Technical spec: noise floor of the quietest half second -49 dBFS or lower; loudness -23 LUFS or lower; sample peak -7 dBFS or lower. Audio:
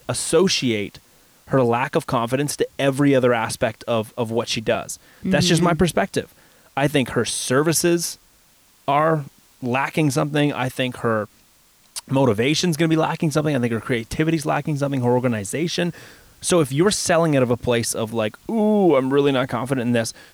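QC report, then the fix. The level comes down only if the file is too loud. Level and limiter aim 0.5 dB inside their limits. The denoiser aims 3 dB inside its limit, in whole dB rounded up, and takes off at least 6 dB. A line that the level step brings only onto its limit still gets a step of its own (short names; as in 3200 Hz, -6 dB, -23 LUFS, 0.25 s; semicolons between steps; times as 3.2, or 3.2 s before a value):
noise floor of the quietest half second -55 dBFS: OK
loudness -20.5 LUFS: fail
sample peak -7.5 dBFS: OK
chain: gain -3 dB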